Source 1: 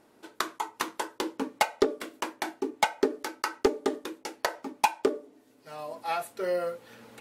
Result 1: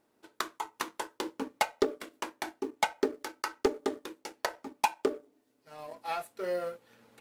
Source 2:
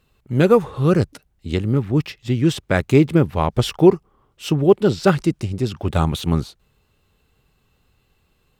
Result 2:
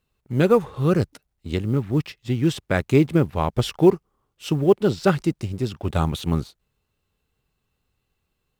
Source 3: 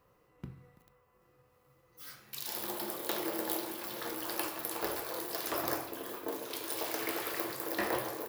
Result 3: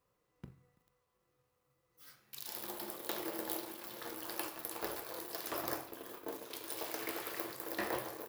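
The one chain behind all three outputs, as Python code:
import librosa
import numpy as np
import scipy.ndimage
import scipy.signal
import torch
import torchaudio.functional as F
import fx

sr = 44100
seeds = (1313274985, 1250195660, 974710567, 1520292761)

y = fx.law_mismatch(x, sr, coded='A')
y = F.gain(torch.from_numpy(y), -3.0).numpy()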